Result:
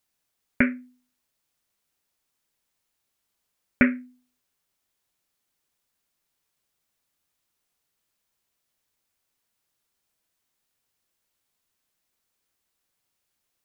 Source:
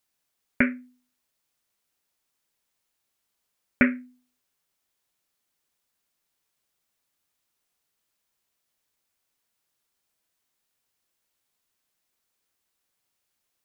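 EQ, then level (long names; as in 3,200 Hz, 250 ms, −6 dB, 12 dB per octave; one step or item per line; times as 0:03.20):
low-shelf EQ 200 Hz +3.5 dB
0.0 dB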